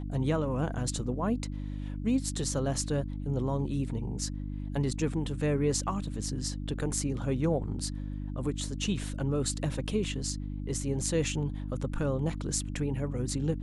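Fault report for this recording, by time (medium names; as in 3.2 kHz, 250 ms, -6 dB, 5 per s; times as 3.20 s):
hum 50 Hz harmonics 6 -36 dBFS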